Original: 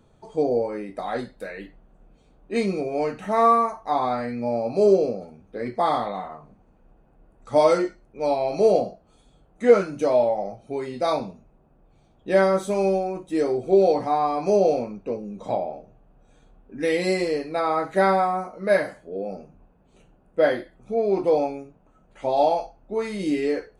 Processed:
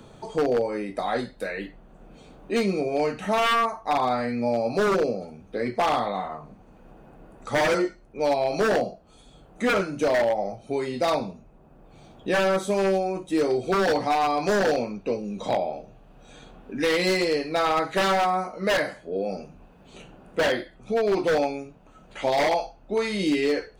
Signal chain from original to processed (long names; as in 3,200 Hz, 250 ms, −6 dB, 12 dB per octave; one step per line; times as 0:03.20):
parametric band 3,700 Hz +3 dB 1.8 octaves, from 0:13.50 +9 dB
wave folding −16 dBFS
multiband upward and downward compressor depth 40%